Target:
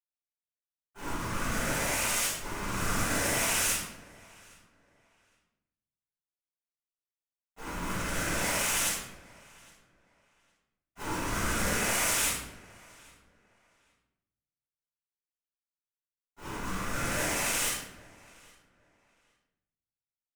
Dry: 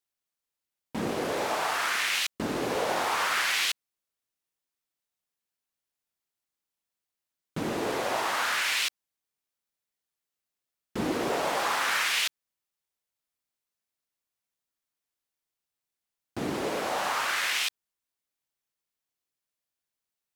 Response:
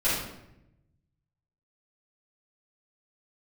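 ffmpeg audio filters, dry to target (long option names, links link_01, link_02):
-filter_complex "[0:a]agate=range=-33dB:threshold=-18dB:ratio=3:detection=peak,asettb=1/sr,asplit=3[link_01][link_02][link_03];[link_01]atrim=end=7.934[link_04];[link_02]atrim=start=7.93:end=10.97,asetpts=PTS-STARTPTS,afade=type=in:duration=0.004:curve=qsin,afade=type=out:start_time=3.036:duration=0.004:curve=qsin,highpass=frequency=600:width=0.5412,highpass=frequency=600:width=1.3066[link_05];[link_03]atrim=start=10.966[link_06];[link_04][link_05]acrossfade=duration=0.004:curve1=hsin:curve2=qsin[link_07];[link_07][link_06]acrossfade=duration=0.004:curve1=qsin:curve2=hsin,asplit=2[link_08][link_09];[link_09]highpass=frequency=720:poles=1,volume=22dB,asoftclip=type=tanh:threshold=-27dB[link_10];[link_08][link_10]amix=inputs=2:normalize=0,lowpass=frequency=3700:poles=1,volume=-6dB,aeval=exprs='val(0)*sin(2*PI*620*n/s)':channel_layout=same,aexciter=amount=11:drive=8.9:freq=6600,adynamicsmooth=sensitivity=6.5:basefreq=2800,acrusher=bits=2:mode=log:mix=0:aa=0.000001,asplit=2[link_11][link_12];[link_12]adelay=813,lowpass=frequency=4300:poles=1,volume=-23.5dB,asplit=2[link_13][link_14];[link_14]adelay=813,lowpass=frequency=4300:poles=1,volume=0.24[link_15];[link_11][link_13][link_15]amix=inputs=3:normalize=0[link_16];[1:a]atrim=start_sample=2205[link_17];[link_16][link_17]afir=irnorm=-1:irlink=0,volume=-6.5dB"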